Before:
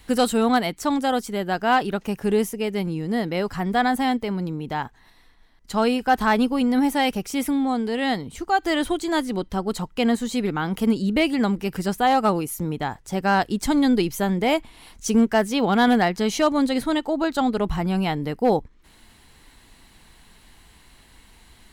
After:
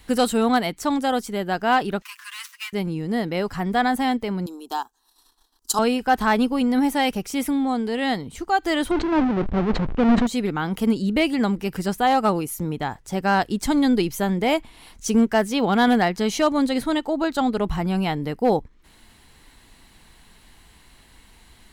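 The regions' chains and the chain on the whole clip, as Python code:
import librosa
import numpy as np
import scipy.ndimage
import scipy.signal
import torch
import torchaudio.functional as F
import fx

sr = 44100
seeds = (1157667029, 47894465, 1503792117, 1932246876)

y = fx.chain(x, sr, fx.dead_time(dead_ms=0.078),
    fx.steep_highpass(hz=1000.0, slope=96),
    fx.comb(ms=6.8, depth=0.83), at=(2.02, 2.73))
y = fx.chain(y, sr, fx.transient(attack_db=6, sustain_db=-10),
    fx.bass_treble(bass_db=-14, treble_db=13),
    fx.fixed_phaser(hz=560.0, stages=6), at=(4.46, 5.79))
y = fx.chain(y, sr, fx.halfwave_hold(),
    fx.spacing_loss(db_at_10k=44),
    fx.sustainer(db_per_s=36.0), at=(8.91, 10.27))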